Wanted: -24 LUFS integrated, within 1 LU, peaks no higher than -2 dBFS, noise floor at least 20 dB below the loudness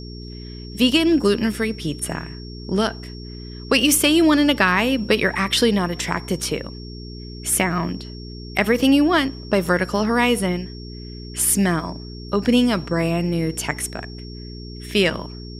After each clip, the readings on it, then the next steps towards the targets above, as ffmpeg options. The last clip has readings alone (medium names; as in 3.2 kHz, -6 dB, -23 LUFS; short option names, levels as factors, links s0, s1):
hum 60 Hz; highest harmonic 420 Hz; hum level -33 dBFS; steady tone 5.5 kHz; tone level -41 dBFS; loudness -19.5 LUFS; peak level -2.0 dBFS; loudness target -24.0 LUFS
-> -af "bandreject=f=60:t=h:w=4,bandreject=f=120:t=h:w=4,bandreject=f=180:t=h:w=4,bandreject=f=240:t=h:w=4,bandreject=f=300:t=h:w=4,bandreject=f=360:t=h:w=4,bandreject=f=420:t=h:w=4"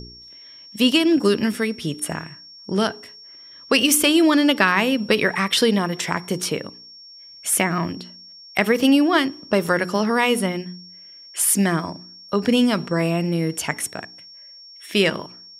hum not found; steady tone 5.5 kHz; tone level -41 dBFS
-> -af "bandreject=f=5500:w=30"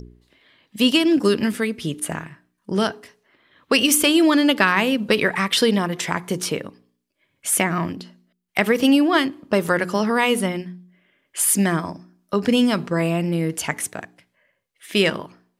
steady tone not found; loudness -20.0 LUFS; peak level -2.0 dBFS; loudness target -24.0 LUFS
-> -af "volume=0.631"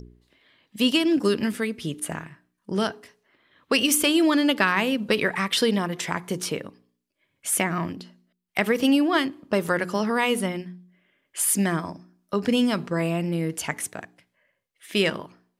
loudness -24.0 LUFS; peak level -6.0 dBFS; noise floor -77 dBFS